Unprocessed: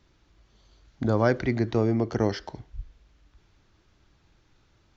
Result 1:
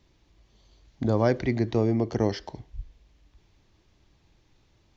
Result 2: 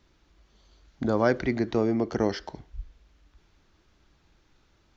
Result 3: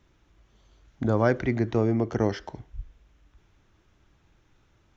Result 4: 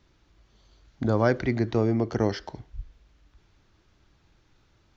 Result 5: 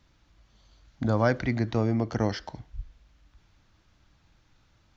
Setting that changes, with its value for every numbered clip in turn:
peaking EQ, frequency: 1.4 kHz, 110 Hz, 4.5 kHz, 13 kHz, 390 Hz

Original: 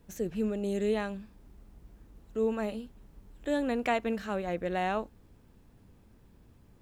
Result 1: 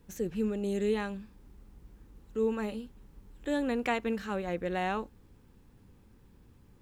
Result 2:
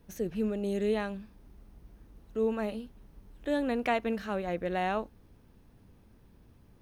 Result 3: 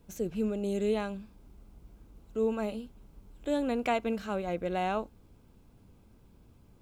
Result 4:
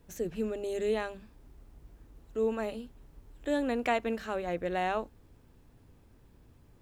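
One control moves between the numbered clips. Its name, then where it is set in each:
band-stop, frequency: 650 Hz, 7.4 kHz, 1.8 kHz, 200 Hz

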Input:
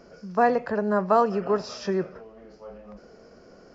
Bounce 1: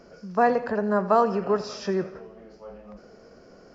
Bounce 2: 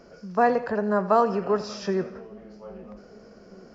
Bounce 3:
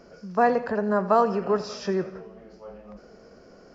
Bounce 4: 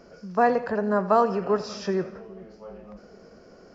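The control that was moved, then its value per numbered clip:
two-band feedback delay, lows: 128 ms, 813 ms, 190 ms, 410 ms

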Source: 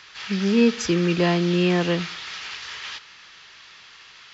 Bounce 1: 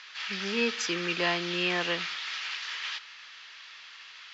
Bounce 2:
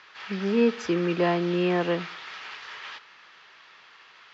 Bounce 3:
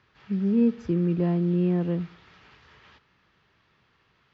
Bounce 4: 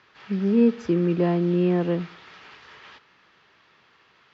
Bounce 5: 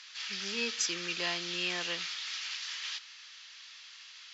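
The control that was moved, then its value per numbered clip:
band-pass filter, frequency: 2.5 kHz, 760 Hz, 110 Hz, 290 Hz, 7.1 kHz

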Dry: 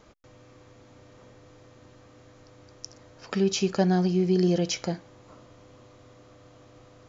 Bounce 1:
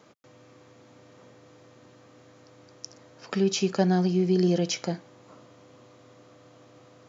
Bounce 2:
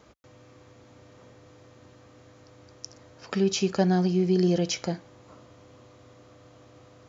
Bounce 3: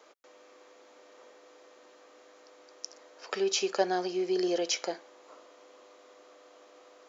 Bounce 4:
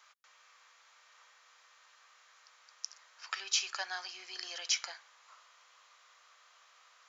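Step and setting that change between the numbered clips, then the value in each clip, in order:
high-pass, cutoff frequency: 120 Hz, 45 Hz, 380 Hz, 1.1 kHz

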